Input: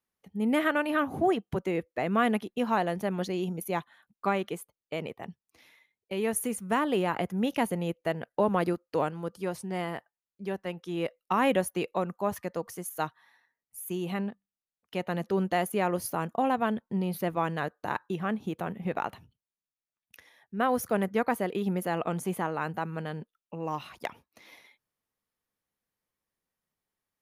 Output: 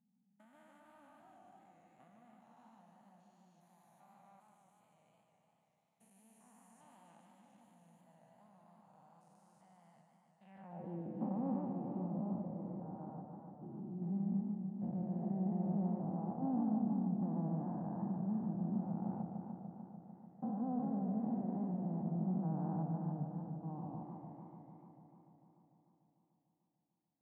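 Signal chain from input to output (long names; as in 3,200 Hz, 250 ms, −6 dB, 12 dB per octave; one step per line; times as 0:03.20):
spectrum averaged block by block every 400 ms
drawn EQ curve 220 Hz 0 dB, 400 Hz −26 dB, 770 Hz −5 dB, 1,200 Hz −17 dB, 1,900 Hz −24 dB, 2,700 Hz −29 dB
downward compressor, threshold −38 dBFS, peak gain reduction 8 dB
band-pass filter sweep 7,300 Hz → 350 Hz, 0:10.28–0:10.91
feedback echo with a swinging delay time 148 ms, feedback 79%, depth 144 cents, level −5.5 dB
level +11.5 dB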